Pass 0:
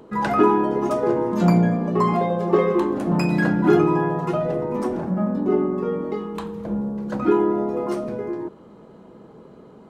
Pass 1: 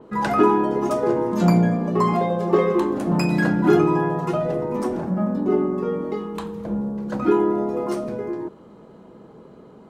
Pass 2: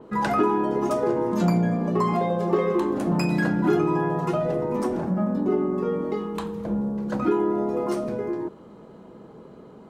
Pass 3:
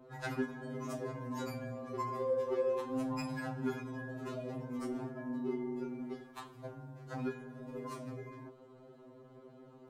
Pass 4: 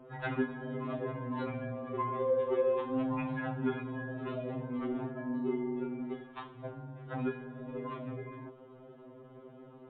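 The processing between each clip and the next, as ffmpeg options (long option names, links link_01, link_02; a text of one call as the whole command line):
ffmpeg -i in.wav -af "adynamicequalizer=threshold=0.00891:dfrequency=4100:dqfactor=0.7:tfrequency=4100:tqfactor=0.7:attack=5:release=100:ratio=0.375:range=2:mode=boostabove:tftype=highshelf" out.wav
ffmpeg -i in.wav -af "acompressor=threshold=-21dB:ratio=2" out.wav
ffmpeg -i in.wav -af "afftfilt=real='re*2.45*eq(mod(b,6),0)':imag='im*2.45*eq(mod(b,6),0)':win_size=2048:overlap=0.75,volume=-8dB" out.wav
ffmpeg -i in.wav -af "volume=4dB" -ar 8000 -c:a libmp3lame -b:a 24k out.mp3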